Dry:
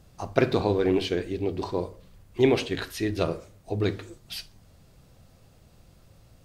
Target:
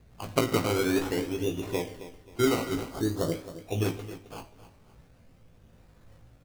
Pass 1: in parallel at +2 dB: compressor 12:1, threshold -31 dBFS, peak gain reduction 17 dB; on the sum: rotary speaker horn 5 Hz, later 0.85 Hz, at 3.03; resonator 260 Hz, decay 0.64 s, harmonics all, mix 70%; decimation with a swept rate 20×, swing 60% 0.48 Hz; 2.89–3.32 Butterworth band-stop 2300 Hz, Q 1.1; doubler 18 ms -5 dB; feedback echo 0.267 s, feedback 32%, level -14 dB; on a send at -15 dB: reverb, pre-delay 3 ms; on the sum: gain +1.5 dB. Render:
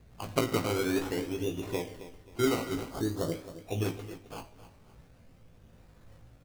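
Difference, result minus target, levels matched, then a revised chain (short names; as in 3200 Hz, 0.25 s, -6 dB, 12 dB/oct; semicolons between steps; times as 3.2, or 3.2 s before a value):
compressor: peak gain reduction +9.5 dB
in parallel at +2 dB: compressor 12:1, threshold -20.5 dBFS, peak gain reduction 7 dB; on the sum: rotary speaker horn 5 Hz, later 0.85 Hz, at 3.03; resonator 260 Hz, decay 0.64 s, harmonics all, mix 70%; decimation with a swept rate 20×, swing 60% 0.48 Hz; 2.89–3.32 Butterworth band-stop 2300 Hz, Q 1.1; doubler 18 ms -5 dB; feedback echo 0.267 s, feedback 32%, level -14 dB; on a send at -15 dB: reverb, pre-delay 3 ms; on the sum: gain +1.5 dB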